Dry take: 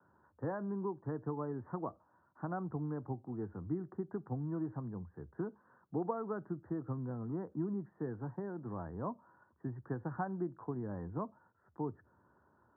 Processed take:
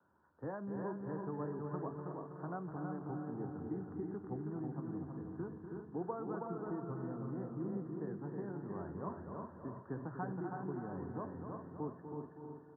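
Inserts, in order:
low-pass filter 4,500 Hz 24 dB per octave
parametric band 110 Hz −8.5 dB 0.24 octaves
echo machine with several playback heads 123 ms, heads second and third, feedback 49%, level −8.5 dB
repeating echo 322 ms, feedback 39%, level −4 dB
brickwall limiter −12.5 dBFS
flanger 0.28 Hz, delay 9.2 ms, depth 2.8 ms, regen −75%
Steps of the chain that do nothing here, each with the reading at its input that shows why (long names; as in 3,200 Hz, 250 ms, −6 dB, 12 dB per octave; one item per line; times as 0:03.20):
low-pass filter 4,500 Hz: nothing at its input above 1,500 Hz
brickwall limiter −12.5 dBFS: peak of its input −22.0 dBFS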